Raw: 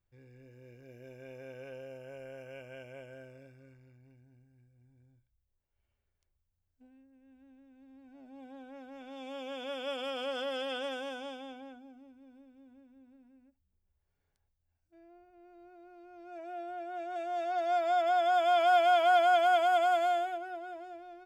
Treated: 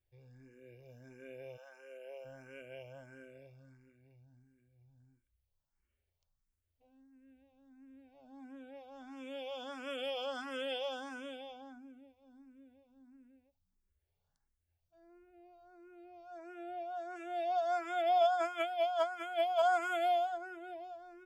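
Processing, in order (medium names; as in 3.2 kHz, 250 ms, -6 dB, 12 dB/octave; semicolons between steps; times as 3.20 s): 1.56–2.24 s: high-pass 630 Hz -> 300 Hz 24 dB/octave; 18.18–19.62 s: compressor with a negative ratio -29 dBFS, ratio -0.5; barber-pole phaser +1.5 Hz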